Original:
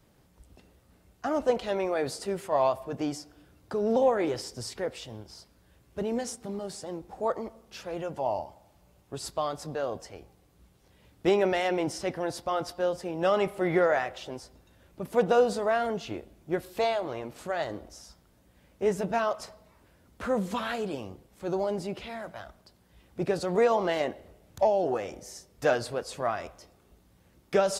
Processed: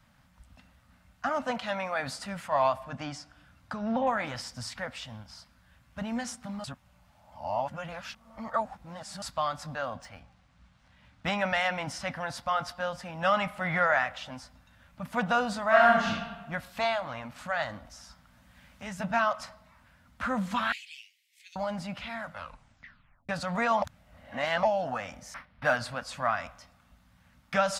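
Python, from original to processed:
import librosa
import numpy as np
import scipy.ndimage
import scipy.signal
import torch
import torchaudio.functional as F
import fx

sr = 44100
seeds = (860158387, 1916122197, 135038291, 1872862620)

y = fx.highpass(x, sr, hz=110.0, slope=12, at=(1.29, 2.0))
y = fx.env_lowpass_down(y, sr, base_hz=2800.0, full_db=-21.0, at=(2.75, 4.07))
y = fx.resample_linear(y, sr, factor=3, at=(9.85, 11.27))
y = fx.reverb_throw(y, sr, start_s=15.67, length_s=0.41, rt60_s=1.2, drr_db=-5.0)
y = fx.band_squash(y, sr, depth_pct=40, at=(17.85, 19.0))
y = fx.steep_highpass(y, sr, hz=2000.0, slope=72, at=(20.72, 21.56))
y = fx.resample_linear(y, sr, factor=6, at=(25.34, 25.77))
y = fx.edit(y, sr, fx.reverse_span(start_s=6.64, length_s=2.58),
    fx.tape_stop(start_s=22.24, length_s=1.05),
    fx.reverse_span(start_s=23.82, length_s=0.81), tone=tone)
y = fx.curve_eq(y, sr, hz=(260.0, 380.0, 560.0, 1400.0, 12000.0), db=(0, -28, -4, 7, -5))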